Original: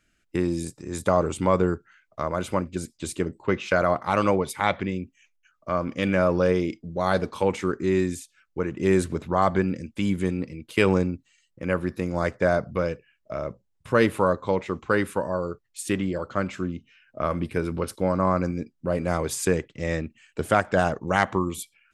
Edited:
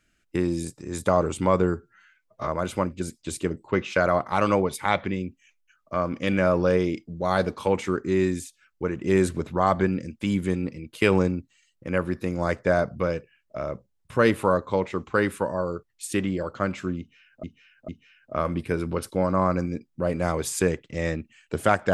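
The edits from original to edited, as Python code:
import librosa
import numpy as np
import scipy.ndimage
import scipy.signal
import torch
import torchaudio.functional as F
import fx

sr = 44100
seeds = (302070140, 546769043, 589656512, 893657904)

y = fx.edit(x, sr, fx.stretch_span(start_s=1.74, length_s=0.49, factor=1.5),
    fx.repeat(start_s=16.74, length_s=0.45, count=3), tone=tone)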